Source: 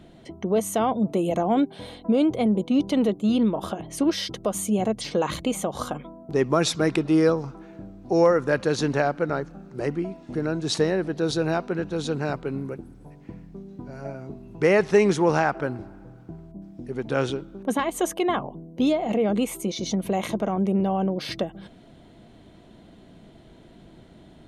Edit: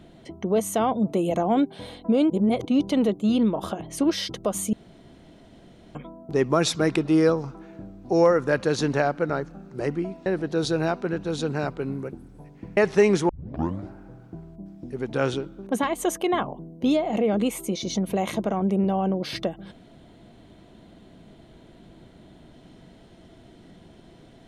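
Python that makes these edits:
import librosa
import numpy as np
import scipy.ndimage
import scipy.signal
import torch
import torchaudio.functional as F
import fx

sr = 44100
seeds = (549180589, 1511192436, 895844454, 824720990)

y = fx.edit(x, sr, fx.reverse_span(start_s=2.3, length_s=0.35),
    fx.room_tone_fill(start_s=4.73, length_s=1.22),
    fx.cut(start_s=10.26, length_s=0.66),
    fx.cut(start_s=13.43, length_s=1.3),
    fx.tape_start(start_s=15.25, length_s=0.59), tone=tone)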